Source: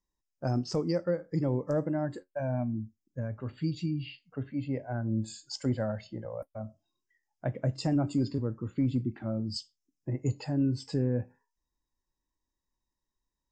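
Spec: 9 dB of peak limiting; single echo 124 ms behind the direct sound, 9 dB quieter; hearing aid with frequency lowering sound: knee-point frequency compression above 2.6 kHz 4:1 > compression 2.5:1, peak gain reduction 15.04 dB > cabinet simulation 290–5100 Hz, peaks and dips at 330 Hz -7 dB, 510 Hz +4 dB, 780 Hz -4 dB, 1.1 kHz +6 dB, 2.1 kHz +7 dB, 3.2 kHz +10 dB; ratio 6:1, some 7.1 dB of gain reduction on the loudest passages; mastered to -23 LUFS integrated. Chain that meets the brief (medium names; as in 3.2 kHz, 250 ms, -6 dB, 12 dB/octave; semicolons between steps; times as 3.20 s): compression 6:1, threshold -31 dBFS; peak limiter -28.5 dBFS; delay 124 ms -9 dB; knee-point frequency compression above 2.6 kHz 4:1; compression 2.5:1, threshold -54 dBFS; cabinet simulation 290–5100 Hz, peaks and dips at 330 Hz -7 dB, 510 Hz +4 dB, 780 Hz -4 dB, 1.1 kHz +6 dB, 2.1 kHz +7 dB, 3.2 kHz +10 dB; trim +27 dB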